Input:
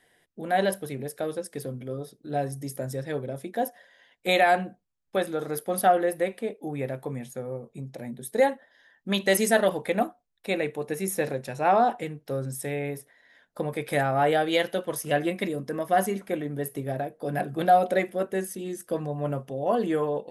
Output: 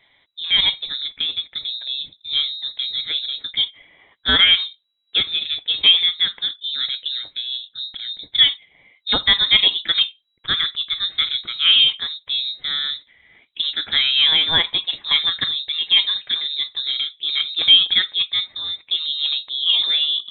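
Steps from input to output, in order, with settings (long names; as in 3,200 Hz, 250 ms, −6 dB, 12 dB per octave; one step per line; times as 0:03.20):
voice inversion scrambler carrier 3,900 Hz
level +6.5 dB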